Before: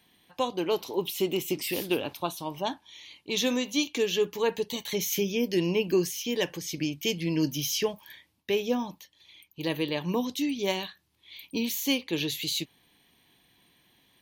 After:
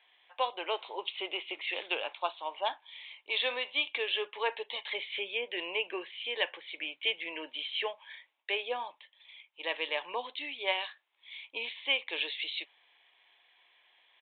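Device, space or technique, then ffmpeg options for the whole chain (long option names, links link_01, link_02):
musical greeting card: -af "aresample=8000,aresample=44100,highpass=frequency=580:width=0.5412,highpass=frequency=580:width=1.3066,equalizer=frequency=2200:width_type=o:width=0.37:gain=4.5"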